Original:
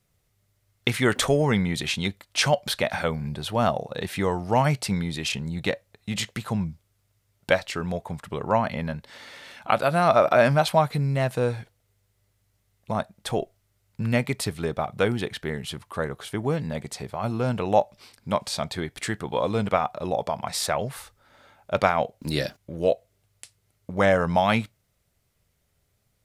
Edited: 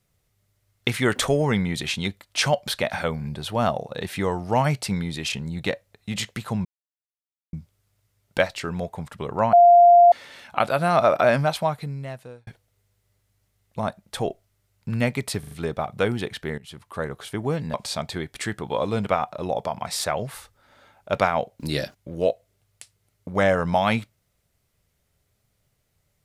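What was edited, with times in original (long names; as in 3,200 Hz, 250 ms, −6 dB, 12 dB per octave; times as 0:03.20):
0:06.65: splice in silence 0.88 s
0:08.65–0:09.24: beep over 697 Hz −8.5 dBFS
0:10.34–0:11.59: fade out
0:14.51: stutter 0.04 s, 4 plays
0:15.58–0:16.20: fade in equal-power, from −17 dB
0:16.74–0:18.36: remove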